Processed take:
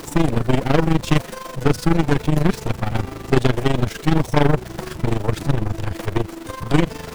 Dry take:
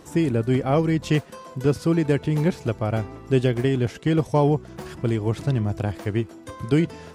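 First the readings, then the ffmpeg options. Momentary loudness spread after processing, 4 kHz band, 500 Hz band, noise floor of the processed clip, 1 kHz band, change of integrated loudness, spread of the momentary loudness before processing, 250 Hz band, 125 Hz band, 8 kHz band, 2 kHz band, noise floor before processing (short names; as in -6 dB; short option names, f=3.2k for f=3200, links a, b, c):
8 LU, +7.0 dB, +1.0 dB, -36 dBFS, +6.0 dB, +2.5 dB, 7 LU, +2.0 dB, +2.5 dB, +8.0 dB, +6.0 dB, -44 dBFS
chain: -af "aeval=exprs='val(0)+0.5*0.0251*sgn(val(0))':c=same,tremolo=f=24:d=0.71,aeval=exprs='0.422*(cos(1*acos(clip(val(0)/0.422,-1,1)))-cos(1*PI/2))+0.0841*(cos(8*acos(clip(val(0)/0.422,-1,1)))-cos(8*PI/2))':c=same,volume=4dB"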